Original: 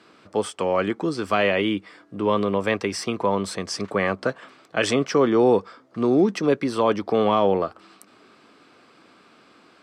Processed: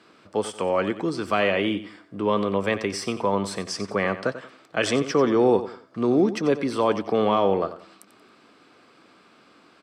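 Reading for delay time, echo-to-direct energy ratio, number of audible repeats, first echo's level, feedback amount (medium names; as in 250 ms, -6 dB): 91 ms, -12.5 dB, 3, -13.0 dB, 32%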